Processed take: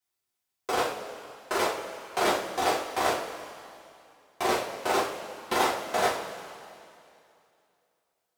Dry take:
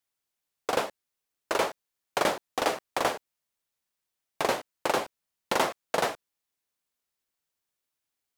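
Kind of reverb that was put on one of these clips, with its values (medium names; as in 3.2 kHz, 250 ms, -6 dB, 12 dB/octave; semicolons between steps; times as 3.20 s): two-slope reverb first 0.36 s, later 2.6 s, from -15 dB, DRR -7.5 dB; trim -6.5 dB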